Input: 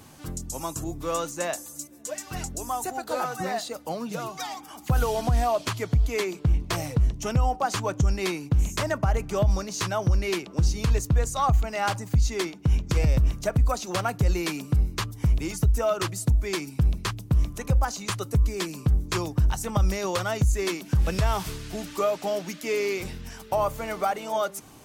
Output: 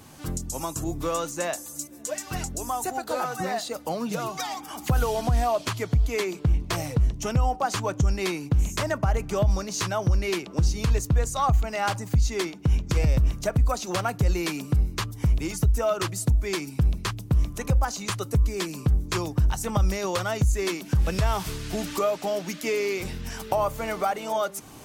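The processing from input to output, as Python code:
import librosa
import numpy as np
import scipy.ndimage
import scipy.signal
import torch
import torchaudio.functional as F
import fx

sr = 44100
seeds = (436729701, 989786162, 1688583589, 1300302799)

y = fx.recorder_agc(x, sr, target_db=-19.0, rise_db_per_s=14.0, max_gain_db=30)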